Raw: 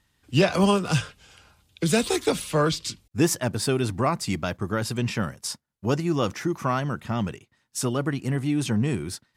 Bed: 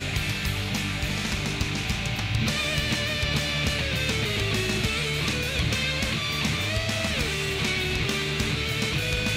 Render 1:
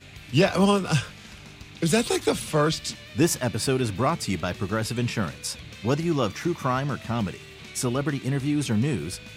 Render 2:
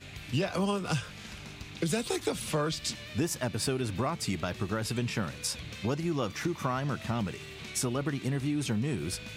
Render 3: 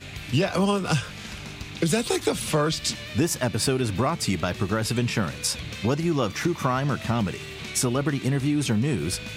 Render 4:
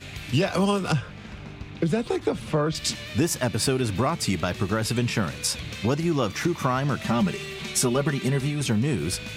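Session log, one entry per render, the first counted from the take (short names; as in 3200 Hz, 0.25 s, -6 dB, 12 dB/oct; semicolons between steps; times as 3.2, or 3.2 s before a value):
add bed -17 dB
compressor 4:1, threshold -28 dBFS, peak gain reduction 11.5 dB
gain +7 dB
0.92–2.75 LPF 1200 Hz 6 dB/oct; 7.01–8.61 comb 5.1 ms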